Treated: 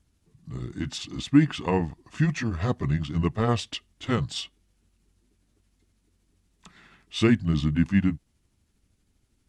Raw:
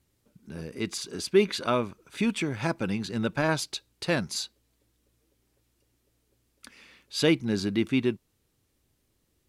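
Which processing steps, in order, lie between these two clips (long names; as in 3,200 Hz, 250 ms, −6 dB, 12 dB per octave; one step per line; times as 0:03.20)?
pitch shift by two crossfaded delay taps −5 semitones
low-shelf EQ 270 Hz +7.5 dB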